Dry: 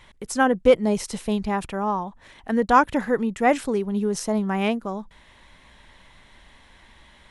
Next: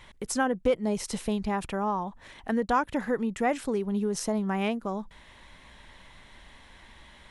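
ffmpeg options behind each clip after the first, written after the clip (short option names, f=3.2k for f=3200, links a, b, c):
-af "acompressor=threshold=-28dB:ratio=2"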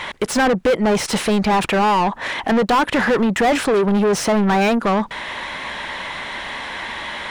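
-filter_complex "[0:a]asplit=2[a][b];[b]highpass=f=720:p=1,volume=31dB,asoftclip=type=tanh:threshold=-13dB[c];[a][c]amix=inputs=2:normalize=0,lowpass=f=2.2k:p=1,volume=-6dB,volume=4.5dB"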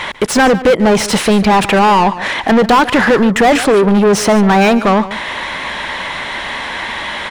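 -af "aecho=1:1:146:0.168,volume=6.5dB"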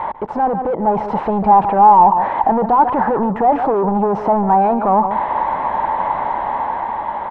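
-af "alimiter=limit=-13.5dB:level=0:latency=1:release=40,dynaudnorm=f=160:g=11:m=3.5dB,lowpass=f=870:t=q:w=5.2,volume=-4.5dB"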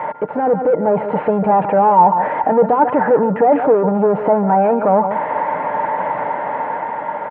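-af "highpass=160,equalizer=f=340:t=q:w=4:g=-4,equalizer=f=520:t=q:w=4:g=5,equalizer=f=780:t=q:w=4:g=-7,equalizer=f=1.1k:t=q:w=4:g=-9,lowpass=f=2.6k:w=0.5412,lowpass=f=2.6k:w=1.3066,aeval=exprs='val(0)+0.00562*sin(2*PI*1400*n/s)':c=same,aecho=1:1:6.6:0.38,volume=3.5dB"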